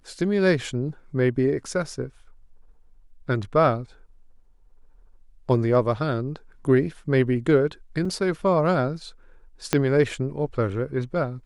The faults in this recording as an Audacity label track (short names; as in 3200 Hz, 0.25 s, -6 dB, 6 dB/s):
8.050000	8.050000	gap 3.7 ms
9.730000	9.730000	pop -4 dBFS